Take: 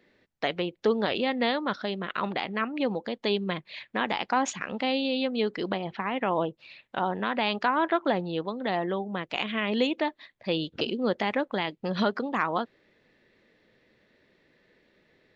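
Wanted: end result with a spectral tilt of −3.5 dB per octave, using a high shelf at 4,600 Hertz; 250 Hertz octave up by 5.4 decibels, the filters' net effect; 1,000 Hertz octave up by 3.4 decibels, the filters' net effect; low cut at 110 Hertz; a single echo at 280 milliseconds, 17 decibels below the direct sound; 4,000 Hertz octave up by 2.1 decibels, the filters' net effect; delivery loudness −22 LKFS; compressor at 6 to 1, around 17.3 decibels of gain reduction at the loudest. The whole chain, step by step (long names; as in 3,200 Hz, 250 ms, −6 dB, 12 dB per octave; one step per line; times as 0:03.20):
high-pass filter 110 Hz
parametric band 250 Hz +6.5 dB
parametric band 1,000 Hz +4 dB
parametric band 4,000 Hz +5.5 dB
high-shelf EQ 4,600 Hz −6.5 dB
downward compressor 6 to 1, threshold −36 dBFS
single-tap delay 280 ms −17 dB
level +17.5 dB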